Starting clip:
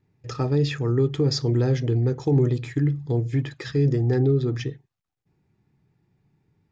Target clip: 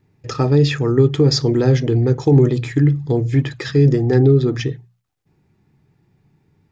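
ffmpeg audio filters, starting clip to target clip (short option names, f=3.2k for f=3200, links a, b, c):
-af "bandreject=f=60:t=h:w=6,bandreject=f=120:t=h:w=6,bandreject=f=180:t=h:w=6,volume=8dB"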